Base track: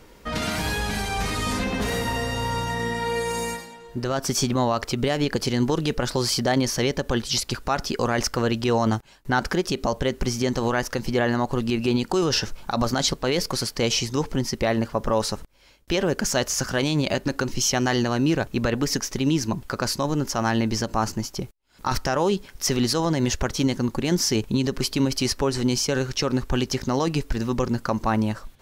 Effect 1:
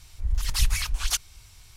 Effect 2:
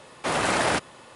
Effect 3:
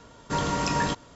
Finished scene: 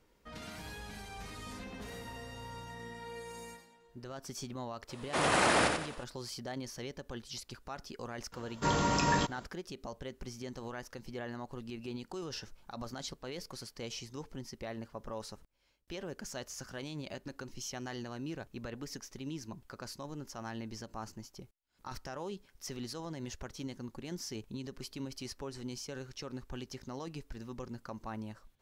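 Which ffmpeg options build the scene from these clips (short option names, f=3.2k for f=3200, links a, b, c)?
-filter_complex "[0:a]volume=-19.5dB[a];[2:a]aecho=1:1:90|180|270|360|450:0.596|0.238|0.0953|0.0381|0.0152,atrim=end=1.15,asetpts=PTS-STARTPTS,volume=-5dB,afade=t=in:d=0.004:c=hsin,afade=t=out:st=1.146:d=0.004:c=hsin,adelay=215649S[b];[3:a]atrim=end=1.15,asetpts=PTS-STARTPTS,volume=-3dB,afade=t=in:d=0.004:c=hsin,afade=t=out:st=1.146:d=0.004:c=hsin,adelay=8320[c];[a][b][c]amix=inputs=3:normalize=0"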